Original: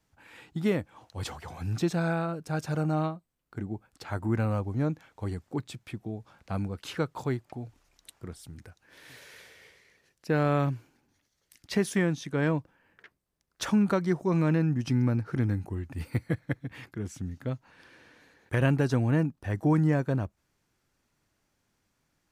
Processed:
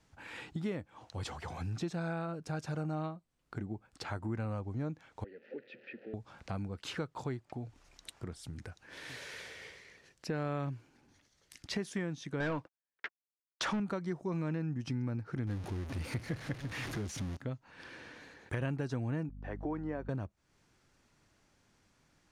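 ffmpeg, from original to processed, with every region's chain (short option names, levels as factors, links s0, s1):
-filter_complex "[0:a]asettb=1/sr,asplit=3[s0][s1][s2];[s0]atrim=end=5.244[s3];[s1]atrim=start=5.24:end=6.14,asetpts=PTS-STARTPTS,afade=t=in:d=0.004:c=qsin,afade=t=out:st=0.896:d=0.004:c=qsin,aeval=exprs='val(0)+0.5*0.00794*sgn(val(0))':c=same,asplit=3[s4][s5][s6];[s4]bandpass=f=530:t=q:w=8,volume=1[s7];[s5]bandpass=f=1840:t=q:w=8,volume=0.501[s8];[s6]bandpass=f=2480:t=q:w=8,volume=0.355[s9];[s7][s8][s9]amix=inputs=3:normalize=0,highpass=210,equalizer=f=230:t=q:w=4:g=10,equalizer=f=420:t=q:w=4:g=4,equalizer=f=660:t=q:w=4:g=-8,equalizer=f=980:t=q:w=4:g=-5,equalizer=f=1400:t=q:w=4:g=5,equalizer=f=3400:t=q:w=4:g=-5,lowpass=f=4200:w=0.5412,lowpass=f=4200:w=1.3066[s10];[s2]atrim=start=6.136[s11];[s3][s10]acrossfade=d=0.004:c1=hsin:c2=qsin[s12];[s12][s11]acrossfade=d=0.004:c1=qsin:c2=hsin,asettb=1/sr,asplit=3[s13][s14][s15];[s13]atrim=end=12.404[s16];[s14]atrim=start=12.4:end=13.8,asetpts=PTS-STARTPTS,afade=t=in:d=0.004:c=qsin,afade=t=out:st=1.396:d=0.004:c=qsin,agate=range=0.00251:threshold=0.002:ratio=16:release=100:detection=peak,asplit=2[s17][s18];[s18]highpass=f=720:p=1,volume=12.6,asoftclip=type=tanh:threshold=0.178[s19];[s17][s19]amix=inputs=2:normalize=0,lowpass=f=2900:p=1,volume=0.501[s20];[s15]atrim=start=13.796[s21];[s16][s20]acrossfade=d=0.004:c1=hsin:c2=qsin[s22];[s22][s21]acrossfade=d=0.004:c1=qsin:c2=hsin,asettb=1/sr,asplit=3[s23][s24][s25];[s23]atrim=end=15.474[s26];[s24]atrim=start=15.47:end=17.37,asetpts=PTS-STARTPTS,afade=t=in:d=0.004:c=qsin,afade=t=out:st=1.896:d=0.004:c=qsin,aeval=exprs='val(0)+0.5*0.0211*sgn(val(0))':c=same,bandreject=f=7700:w=7.1[s27];[s25]atrim=start=17.366[s28];[s26][s27]acrossfade=d=0.004:c1=hsin:c2=qsin[s29];[s29][s28]acrossfade=d=0.004:c1=qsin:c2=hsin,asettb=1/sr,asplit=3[s30][s31][s32];[s30]atrim=end=19.294[s33];[s31]atrim=start=19.29:end=20.09,asetpts=PTS-STARTPTS,afade=t=in:d=0.004:c=qsin,afade=t=out:st=0.796:d=0.004:c=qsin,highpass=330,lowpass=4500,highshelf=f=2200:g=-11,aeval=exprs='val(0)+0.01*(sin(2*PI*50*n/s)+sin(2*PI*2*50*n/s)/2+sin(2*PI*3*50*n/s)/3+sin(2*PI*4*50*n/s)/4+sin(2*PI*5*50*n/s)/5)':c=same[s34];[s32]atrim=start=20.086[s35];[s33][s34]acrossfade=d=0.004:c1=hsin:c2=qsin[s36];[s36][s35]acrossfade=d=0.004:c1=qsin:c2=hsin,acompressor=threshold=0.00447:ratio=2.5,lowpass=8500,volume=1.88"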